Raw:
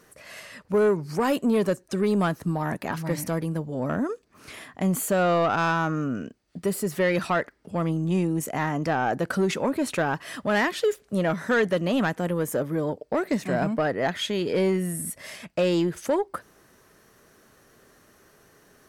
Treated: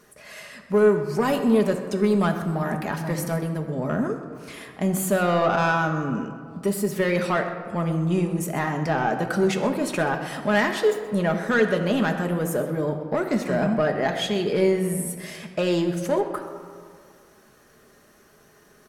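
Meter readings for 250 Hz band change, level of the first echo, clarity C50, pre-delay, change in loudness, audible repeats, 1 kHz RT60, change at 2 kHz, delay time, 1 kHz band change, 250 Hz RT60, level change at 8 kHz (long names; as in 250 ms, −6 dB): +2.0 dB, −16.0 dB, 7.5 dB, 5 ms, +2.0 dB, 1, 2.2 s, +2.0 dB, 128 ms, +1.5 dB, 2.1 s, +1.0 dB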